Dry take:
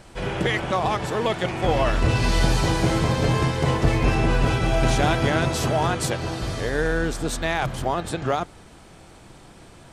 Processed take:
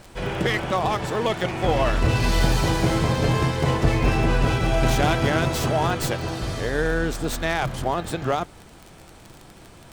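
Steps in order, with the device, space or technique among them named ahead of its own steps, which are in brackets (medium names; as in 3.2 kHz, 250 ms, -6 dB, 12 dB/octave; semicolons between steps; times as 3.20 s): record under a worn stylus (tracing distortion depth 0.066 ms; crackle 32 per s -30 dBFS; pink noise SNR 38 dB)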